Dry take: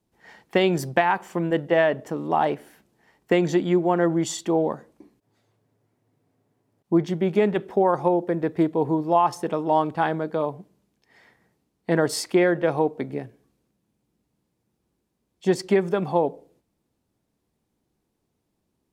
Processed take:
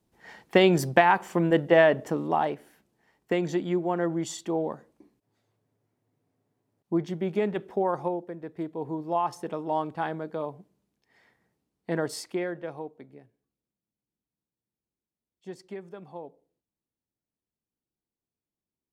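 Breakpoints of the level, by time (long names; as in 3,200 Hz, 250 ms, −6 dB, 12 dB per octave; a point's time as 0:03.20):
0:02.13 +1 dB
0:02.53 −6.5 dB
0:08.00 −6.5 dB
0:08.37 −15 dB
0:09.19 −7.5 dB
0:12.02 −7.5 dB
0:13.16 −19.5 dB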